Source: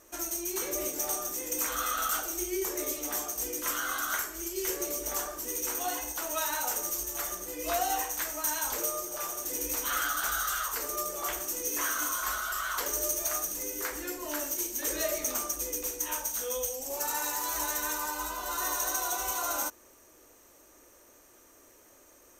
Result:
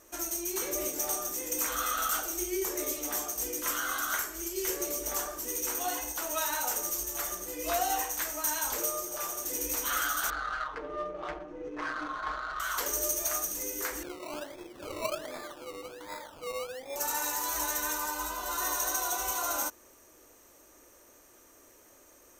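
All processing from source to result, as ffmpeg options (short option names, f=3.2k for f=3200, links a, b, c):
-filter_complex "[0:a]asettb=1/sr,asplit=3[a][b][c];[a]atrim=end=10.304[d];[b]atrim=start=10.3:end=12.6,asetpts=PTS-STARTPTS,afade=t=in:d=0.004:c=qsin,afade=t=out:st=2.296:d=0.004:c=qsin,lowpass=3.4k,adynamicsmooth=sensitivity=3:basefreq=750,aecho=1:1:6.5:0.57,atrim=end_sample=101430[e];[c]atrim=start=12.596[f];[d][e]acrossfade=d=0.004:c1=hsin:c2=qsin[g];[g][f]acrossfade=d=0.004:c1=qsin:c2=hsin,asettb=1/sr,asplit=3[h][i][j];[h]atrim=end=14.034[k];[i]atrim=start=14.03:end=16.96,asetpts=PTS-STARTPTS,afade=t=in:d=0.004:c=qsin,afade=t=out:st=2.926:d=0.004:c=qsin,bandpass=f=600:t=q:w=0.83,acrusher=samples=21:mix=1:aa=0.000001:lfo=1:lforange=12.6:lforate=1.3[l];[j]atrim=start=16.956[m];[k][l]acrossfade=d=0.004:c1=hsin:c2=qsin[n];[n][m]acrossfade=d=0.004:c1=qsin:c2=hsin"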